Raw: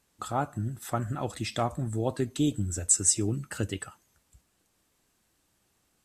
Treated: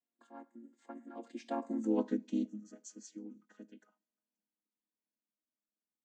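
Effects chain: chord vocoder minor triad, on A3; Doppler pass-by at 1.86, 18 m/s, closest 2.6 m

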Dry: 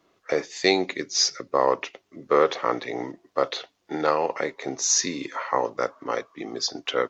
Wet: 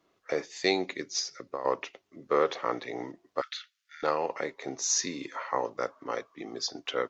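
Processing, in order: 1.19–1.65 compressor 6:1, threshold -26 dBFS, peak gain reduction 11 dB; 3.41–4.03 steep high-pass 1300 Hz 72 dB/oct; gain -6 dB

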